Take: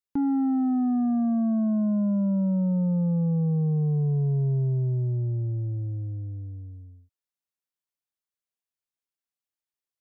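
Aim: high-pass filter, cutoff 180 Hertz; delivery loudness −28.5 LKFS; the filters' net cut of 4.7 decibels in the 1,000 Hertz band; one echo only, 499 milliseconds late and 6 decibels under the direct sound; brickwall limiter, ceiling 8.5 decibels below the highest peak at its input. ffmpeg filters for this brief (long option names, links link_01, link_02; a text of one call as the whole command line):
ffmpeg -i in.wav -af "highpass=180,equalizer=frequency=1000:width_type=o:gain=-7.5,alimiter=level_in=5dB:limit=-24dB:level=0:latency=1,volume=-5dB,aecho=1:1:499:0.501,volume=5.5dB" out.wav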